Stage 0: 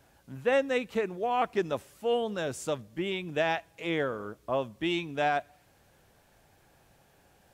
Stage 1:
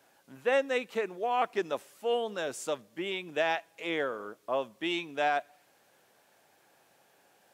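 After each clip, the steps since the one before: Bessel high-pass 360 Hz, order 2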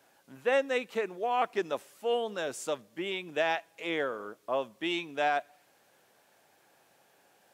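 nothing audible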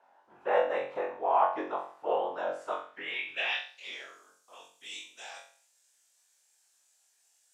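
whisperiser; flutter echo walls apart 3.8 m, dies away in 0.45 s; band-pass sweep 900 Hz -> 7400 Hz, 2.55–4.23; gain +4.5 dB

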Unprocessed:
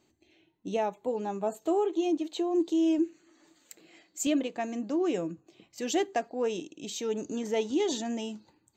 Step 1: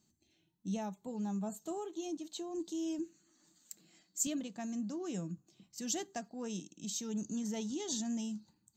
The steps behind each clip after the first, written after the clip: EQ curve 110 Hz 0 dB, 200 Hz +8 dB, 280 Hz -6 dB, 460 Hz -12 dB, 760 Hz -8 dB, 1500 Hz -5 dB, 2300 Hz -10 dB, 5500 Hz +5 dB; gain -4.5 dB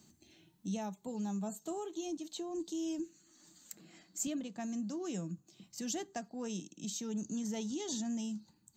three-band squash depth 40%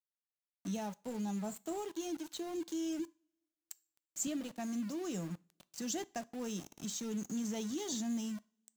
sample gate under -46.5 dBFS; two-slope reverb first 0.38 s, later 1.8 s, from -28 dB, DRR 18 dB

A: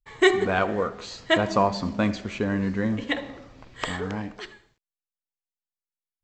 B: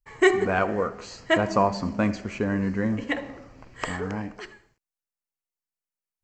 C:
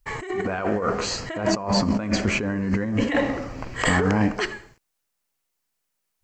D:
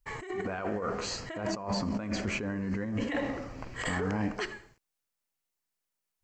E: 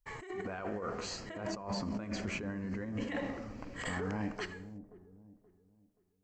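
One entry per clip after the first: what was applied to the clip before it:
bell 3600 Hz -14 dB 0.32 oct
negative-ratio compressor -32 dBFS, ratio -1; gain +8 dB
limiter -14.5 dBFS, peak gain reduction 7 dB; gain -8 dB
dark delay 0.527 s, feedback 32%, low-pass 410 Hz, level -10.5 dB; gain -5.5 dB

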